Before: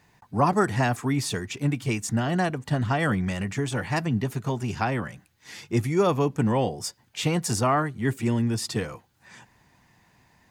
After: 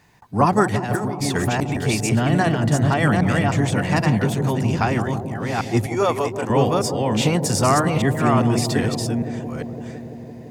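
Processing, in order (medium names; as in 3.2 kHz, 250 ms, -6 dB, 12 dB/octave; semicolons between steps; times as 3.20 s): chunks repeated in reverse 401 ms, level -3 dB; 0.74–1.77 s: compressor with a negative ratio -27 dBFS, ratio -0.5; 5.86–6.50 s: Chebyshev high-pass 560 Hz, order 2; bucket-brigade echo 169 ms, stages 1024, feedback 83%, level -10 dB; trim +4.5 dB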